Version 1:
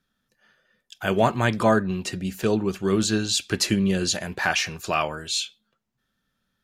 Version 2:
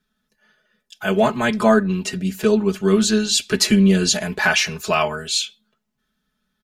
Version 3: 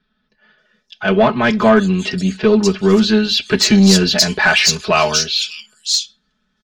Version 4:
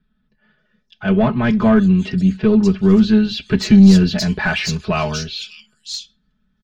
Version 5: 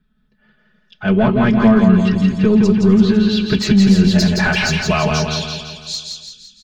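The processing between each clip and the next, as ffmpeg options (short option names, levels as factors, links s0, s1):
-af "aecho=1:1:4.7:0.94,dynaudnorm=f=240:g=11:m=3.76,volume=0.891"
-filter_complex "[0:a]lowpass=f=5200:t=q:w=2,acrossover=split=4000[s0][s1];[s1]adelay=580[s2];[s0][s2]amix=inputs=2:normalize=0,acontrast=78,volume=0.891"
-af "bass=f=250:g=14,treble=f=4000:g=-7,volume=0.447"
-filter_complex "[0:a]alimiter=limit=0.398:level=0:latency=1:release=112,asplit=2[s0][s1];[s1]aecho=0:1:169|338|507|676|845|1014|1183:0.631|0.322|0.164|0.0837|0.0427|0.0218|0.0111[s2];[s0][s2]amix=inputs=2:normalize=0,volume=1.26"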